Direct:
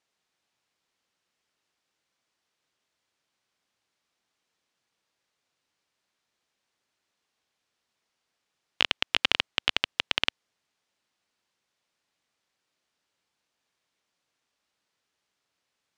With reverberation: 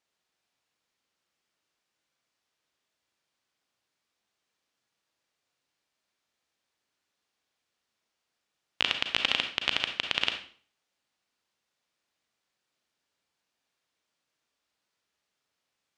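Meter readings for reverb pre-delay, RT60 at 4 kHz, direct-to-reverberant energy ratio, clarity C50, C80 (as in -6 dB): 32 ms, 0.40 s, 5.0 dB, 7.0 dB, 12.0 dB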